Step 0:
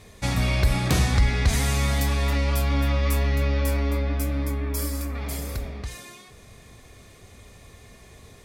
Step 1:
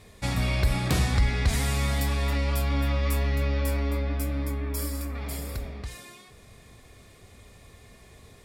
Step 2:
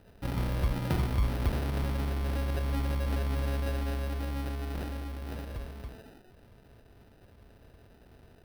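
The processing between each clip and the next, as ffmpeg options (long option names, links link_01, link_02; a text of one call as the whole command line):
ffmpeg -i in.wav -af "bandreject=frequency=6200:width=13,volume=-3dB" out.wav
ffmpeg -i in.wav -af "acrusher=samples=40:mix=1:aa=0.000001,equalizer=frequency=7100:width_type=o:width=0.44:gain=-11,volume=-5dB" out.wav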